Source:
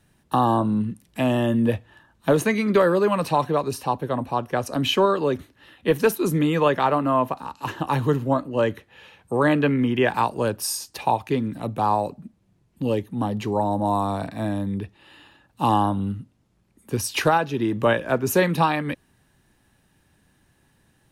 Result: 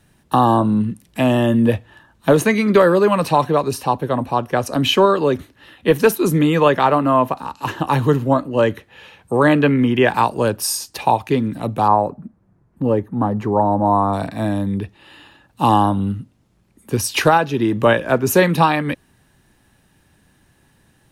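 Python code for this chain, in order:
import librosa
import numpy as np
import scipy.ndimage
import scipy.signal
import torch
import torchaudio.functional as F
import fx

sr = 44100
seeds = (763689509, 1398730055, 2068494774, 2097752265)

y = fx.high_shelf_res(x, sr, hz=2100.0, db=-12.5, q=1.5, at=(11.88, 14.13))
y = y * 10.0 ** (5.5 / 20.0)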